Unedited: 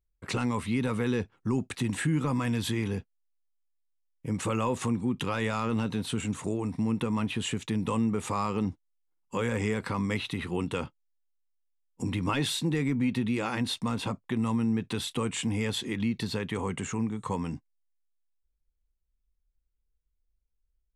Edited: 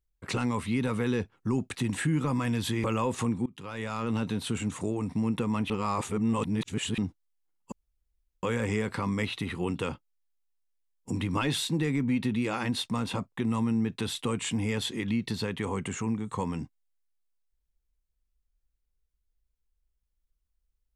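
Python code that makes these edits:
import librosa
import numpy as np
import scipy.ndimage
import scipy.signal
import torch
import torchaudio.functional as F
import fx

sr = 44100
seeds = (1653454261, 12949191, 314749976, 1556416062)

y = fx.edit(x, sr, fx.cut(start_s=2.84, length_s=1.63),
    fx.fade_in_from(start_s=5.09, length_s=0.74, floor_db=-23.5),
    fx.reverse_span(start_s=7.33, length_s=1.28),
    fx.insert_room_tone(at_s=9.35, length_s=0.71), tone=tone)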